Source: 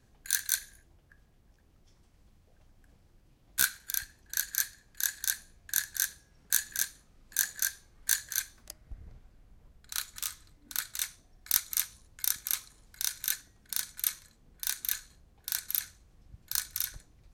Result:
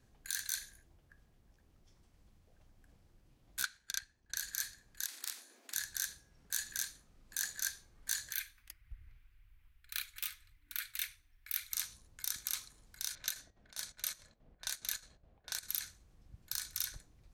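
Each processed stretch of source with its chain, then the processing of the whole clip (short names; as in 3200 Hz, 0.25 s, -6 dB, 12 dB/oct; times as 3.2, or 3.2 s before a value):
3.63–4.36 transient shaper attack +5 dB, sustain -10 dB + air absorption 65 m
5.05–5.74 spectral limiter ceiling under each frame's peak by 19 dB + steep high-pass 230 Hz 96 dB/oct + compressor 4:1, threshold -35 dBFS
8.32–11.73 EQ curve 110 Hz 0 dB, 200 Hz -20 dB, 280 Hz -9 dB, 570 Hz -21 dB, 860 Hz -9 dB, 1500 Hz +3 dB, 2400 Hz +10 dB, 4300 Hz -1 dB, 7000 Hz -6 dB, 16000 Hz +11 dB + flange 1.8 Hz, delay 0.8 ms, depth 4.2 ms, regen +48%
13.15–15.63 low-pass opened by the level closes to 2300 Hz, open at -30.5 dBFS + bell 620 Hz +9.5 dB 0.59 oct + chopper 4.8 Hz, depth 65%, duty 70%
whole clip: limiter -15.5 dBFS; dynamic EQ 4400 Hz, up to +4 dB, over -47 dBFS, Q 0.78; gain -3.5 dB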